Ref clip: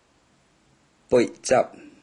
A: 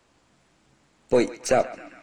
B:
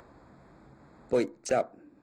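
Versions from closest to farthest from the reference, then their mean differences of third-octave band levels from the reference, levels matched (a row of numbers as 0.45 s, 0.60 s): B, A; 2.0 dB, 3.5 dB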